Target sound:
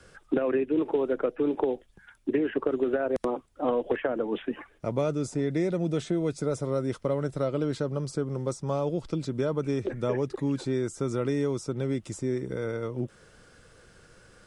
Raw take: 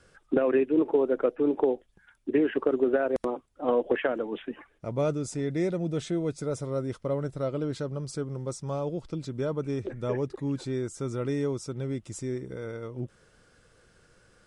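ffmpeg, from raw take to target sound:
-filter_complex "[0:a]acrossover=split=150|1400[s0][s1][s2];[s0]acompressor=threshold=0.00501:ratio=4[s3];[s1]acompressor=threshold=0.0316:ratio=4[s4];[s2]acompressor=threshold=0.00398:ratio=4[s5];[s3][s4][s5]amix=inputs=3:normalize=0,volume=1.88"

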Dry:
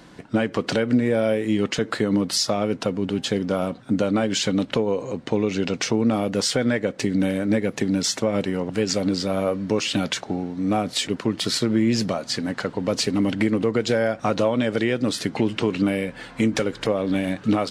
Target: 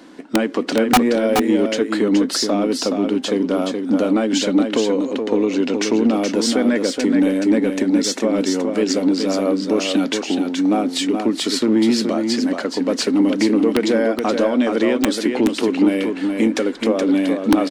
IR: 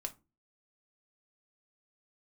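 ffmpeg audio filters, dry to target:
-filter_complex "[0:a]lowshelf=f=180:t=q:w=3:g=-13.5,aeval=exprs='(mod(2.24*val(0)+1,2)-1)/2.24':c=same,acontrast=50,asplit=2[s0][s1];[s1]aecho=0:1:423:0.531[s2];[s0][s2]amix=inputs=2:normalize=0,volume=0.596"

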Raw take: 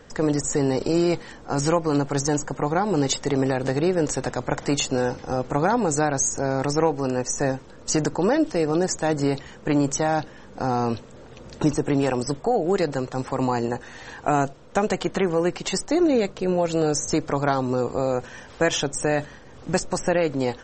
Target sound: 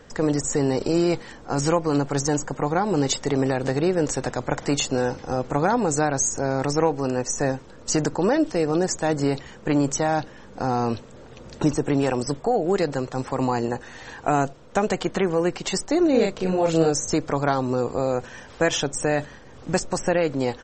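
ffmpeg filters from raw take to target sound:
-filter_complex "[0:a]asplit=3[s0][s1][s2];[s0]afade=t=out:st=16.13:d=0.02[s3];[s1]asplit=2[s4][s5];[s5]adelay=37,volume=0.75[s6];[s4][s6]amix=inputs=2:normalize=0,afade=t=in:st=16.13:d=0.02,afade=t=out:st=16.89:d=0.02[s7];[s2]afade=t=in:st=16.89:d=0.02[s8];[s3][s7][s8]amix=inputs=3:normalize=0"

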